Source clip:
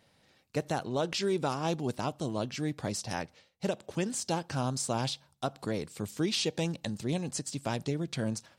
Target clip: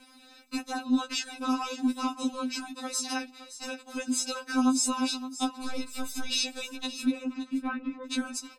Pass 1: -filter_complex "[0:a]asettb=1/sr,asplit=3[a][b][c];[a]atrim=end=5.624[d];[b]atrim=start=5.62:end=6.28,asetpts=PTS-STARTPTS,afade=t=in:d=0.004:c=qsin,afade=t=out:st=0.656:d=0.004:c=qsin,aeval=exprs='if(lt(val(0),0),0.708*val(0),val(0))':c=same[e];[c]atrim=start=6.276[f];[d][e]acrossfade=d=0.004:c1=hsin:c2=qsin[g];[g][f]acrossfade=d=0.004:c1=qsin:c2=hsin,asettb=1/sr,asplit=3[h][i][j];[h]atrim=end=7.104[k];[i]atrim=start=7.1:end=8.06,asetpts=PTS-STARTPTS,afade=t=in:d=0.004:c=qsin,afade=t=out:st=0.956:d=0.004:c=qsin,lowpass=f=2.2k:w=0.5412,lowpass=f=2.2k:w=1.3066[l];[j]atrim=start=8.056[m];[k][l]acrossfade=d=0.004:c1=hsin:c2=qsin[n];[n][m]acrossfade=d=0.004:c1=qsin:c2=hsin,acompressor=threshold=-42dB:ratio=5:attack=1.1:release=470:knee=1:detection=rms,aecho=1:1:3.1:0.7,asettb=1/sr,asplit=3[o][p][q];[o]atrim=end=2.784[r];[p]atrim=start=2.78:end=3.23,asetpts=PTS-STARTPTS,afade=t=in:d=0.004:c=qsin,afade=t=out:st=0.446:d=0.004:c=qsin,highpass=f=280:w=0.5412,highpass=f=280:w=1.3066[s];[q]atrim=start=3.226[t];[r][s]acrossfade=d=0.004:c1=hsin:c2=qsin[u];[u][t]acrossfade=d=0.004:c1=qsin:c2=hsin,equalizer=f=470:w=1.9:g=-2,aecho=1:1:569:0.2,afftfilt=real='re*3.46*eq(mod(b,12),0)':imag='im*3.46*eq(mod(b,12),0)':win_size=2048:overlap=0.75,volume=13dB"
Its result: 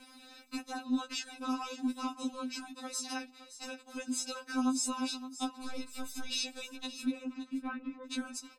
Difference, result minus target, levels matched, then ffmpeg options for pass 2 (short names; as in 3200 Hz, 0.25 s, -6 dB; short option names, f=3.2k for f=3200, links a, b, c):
compressor: peak gain reduction +6.5 dB
-filter_complex "[0:a]asettb=1/sr,asplit=3[a][b][c];[a]atrim=end=5.624[d];[b]atrim=start=5.62:end=6.28,asetpts=PTS-STARTPTS,afade=t=in:d=0.004:c=qsin,afade=t=out:st=0.656:d=0.004:c=qsin,aeval=exprs='if(lt(val(0),0),0.708*val(0),val(0))':c=same[e];[c]atrim=start=6.276[f];[d][e]acrossfade=d=0.004:c1=hsin:c2=qsin[g];[g][f]acrossfade=d=0.004:c1=qsin:c2=hsin,asettb=1/sr,asplit=3[h][i][j];[h]atrim=end=7.104[k];[i]atrim=start=7.1:end=8.06,asetpts=PTS-STARTPTS,afade=t=in:d=0.004:c=qsin,afade=t=out:st=0.956:d=0.004:c=qsin,lowpass=f=2.2k:w=0.5412,lowpass=f=2.2k:w=1.3066[l];[j]atrim=start=8.056[m];[k][l]acrossfade=d=0.004:c1=hsin:c2=qsin[n];[n][m]acrossfade=d=0.004:c1=qsin:c2=hsin,acompressor=threshold=-34dB:ratio=5:attack=1.1:release=470:knee=1:detection=rms,aecho=1:1:3.1:0.7,asettb=1/sr,asplit=3[o][p][q];[o]atrim=end=2.784[r];[p]atrim=start=2.78:end=3.23,asetpts=PTS-STARTPTS,afade=t=in:d=0.004:c=qsin,afade=t=out:st=0.446:d=0.004:c=qsin,highpass=f=280:w=0.5412,highpass=f=280:w=1.3066[s];[q]atrim=start=3.226[t];[r][s]acrossfade=d=0.004:c1=hsin:c2=qsin[u];[u][t]acrossfade=d=0.004:c1=qsin:c2=hsin,equalizer=f=470:w=1.9:g=-2,aecho=1:1:569:0.2,afftfilt=real='re*3.46*eq(mod(b,12),0)':imag='im*3.46*eq(mod(b,12),0)':win_size=2048:overlap=0.75,volume=13dB"